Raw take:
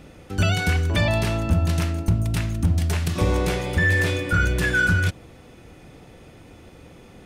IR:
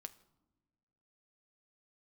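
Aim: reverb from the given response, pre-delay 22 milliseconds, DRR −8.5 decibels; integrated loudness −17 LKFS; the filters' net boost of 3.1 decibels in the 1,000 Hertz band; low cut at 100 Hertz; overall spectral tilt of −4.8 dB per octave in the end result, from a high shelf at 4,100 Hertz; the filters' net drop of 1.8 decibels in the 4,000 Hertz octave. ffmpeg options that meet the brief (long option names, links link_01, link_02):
-filter_complex "[0:a]highpass=100,equalizer=frequency=1000:width_type=o:gain=4.5,equalizer=frequency=4000:width_type=o:gain=-7.5,highshelf=frequency=4100:gain=8.5,asplit=2[link_01][link_02];[1:a]atrim=start_sample=2205,adelay=22[link_03];[link_02][link_03]afir=irnorm=-1:irlink=0,volume=14dB[link_04];[link_01][link_04]amix=inputs=2:normalize=0,volume=-3.5dB"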